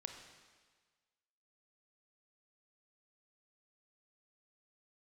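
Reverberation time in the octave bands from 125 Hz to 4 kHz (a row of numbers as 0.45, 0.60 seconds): 1.4, 1.4, 1.5, 1.5, 1.5, 1.5 seconds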